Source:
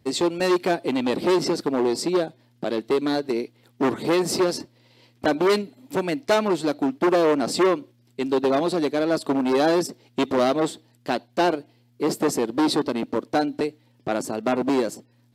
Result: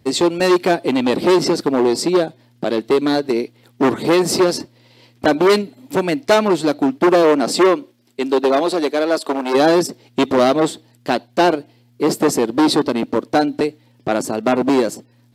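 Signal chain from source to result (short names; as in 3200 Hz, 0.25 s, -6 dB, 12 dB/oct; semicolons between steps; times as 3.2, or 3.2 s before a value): 7.22–9.53 HPF 160 Hz -> 440 Hz 12 dB/oct; gain +6.5 dB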